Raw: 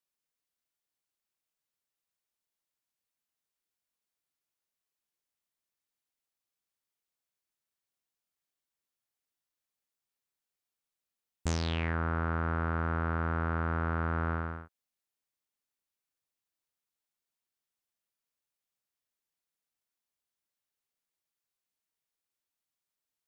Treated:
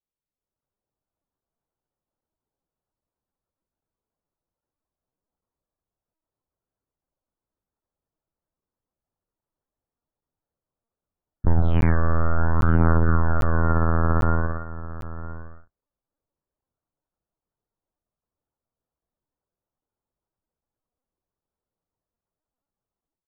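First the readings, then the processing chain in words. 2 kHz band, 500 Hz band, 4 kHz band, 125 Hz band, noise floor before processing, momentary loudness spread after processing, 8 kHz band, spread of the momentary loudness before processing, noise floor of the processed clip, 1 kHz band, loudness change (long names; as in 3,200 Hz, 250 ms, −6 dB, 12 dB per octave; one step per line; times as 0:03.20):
+4.5 dB, +9.5 dB, can't be measured, +11.5 dB, below −85 dBFS, 17 LU, below −10 dB, 4 LU, below −85 dBFS, +7.0 dB, +10.0 dB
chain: low-shelf EQ 100 Hz +9.5 dB
low-pass that shuts in the quiet parts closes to 860 Hz, open at −25.5 dBFS
spectral peaks only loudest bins 64
automatic gain control gain up to 10 dB
treble cut that deepens with the level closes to 1,500 Hz, closed at −18 dBFS
chorus effect 0.25 Hz, depth 4.2 ms
on a send: single-tap delay 978 ms −15 dB
on the sum: linear-prediction vocoder at 8 kHz pitch kept
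regular buffer underruns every 0.80 s, samples 512, zero, from 0:00.61
level +3 dB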